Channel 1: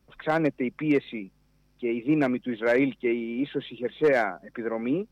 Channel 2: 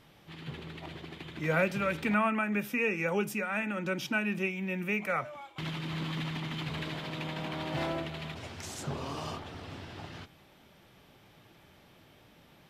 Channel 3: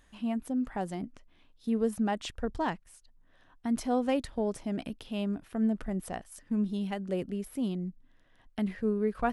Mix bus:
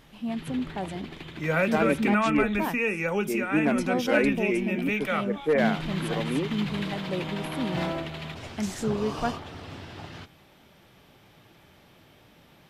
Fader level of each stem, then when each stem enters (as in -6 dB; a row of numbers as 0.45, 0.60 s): -2.0, +3.0, +0.5 dB; 1.45, 0.00, 0.00 s